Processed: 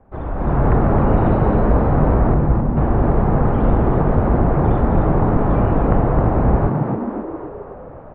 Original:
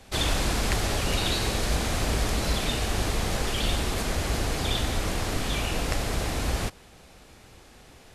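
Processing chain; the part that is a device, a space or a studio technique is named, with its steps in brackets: 2.34–2.77 s: Chebyshev band-stop 110–9800 Hz; frequency-shifting echo 264 ms, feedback 55%, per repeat +90 Hz, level -5 dB; action camera in a waterproof case (low-pass 1.2 kHz 24 dB/octave; level rider gain up to 12.5 dB; AAC 96 kbps 48 kHz)

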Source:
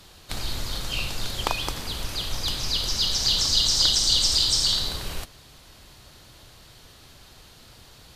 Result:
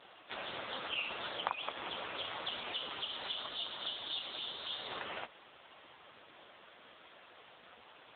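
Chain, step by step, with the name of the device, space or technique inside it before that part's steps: voicemail (band-pass 420–3100 Hz; compression 8:1, threshold -32 dBFS, peak gain reduction 12 dB; trim +3.5 dB; AMR-NB 5.9 kbps 8 kHz)

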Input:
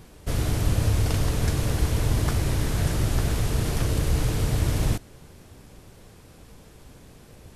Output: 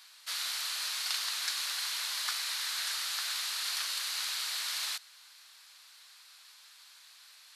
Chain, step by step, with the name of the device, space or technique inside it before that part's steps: headphones lying on a table (high-pass 1.2 kHz 24 dB/octave; peaking EQ 4.2 kHz +11 dB 0.58 oct); trim -1.5 dB

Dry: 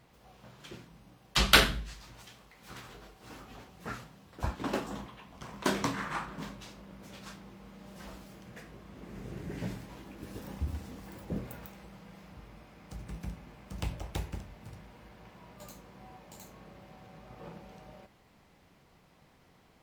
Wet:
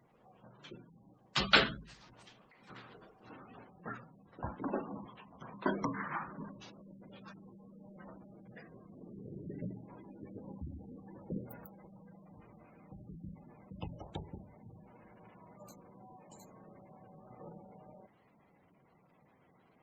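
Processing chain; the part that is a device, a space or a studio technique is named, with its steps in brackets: noise-suppressed video call (high-pass 120 Hz 12 dB/octave; spectral gate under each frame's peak -15 dB strong; trim -2.5 dB; Opus 24 kbps 48 kHz)

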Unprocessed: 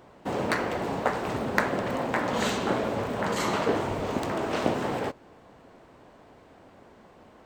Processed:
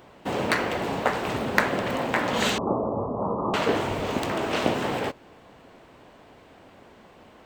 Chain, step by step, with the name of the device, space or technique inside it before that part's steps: 2.58–3.54 s: steep low-pass 1.2 kHz 96 dB/octave; presence and air boost (peaking EQ 2.9 kHz +5.5 dB 1.2 oct; treble shelf 11 kHz +6 dB); trim +1.5 dB

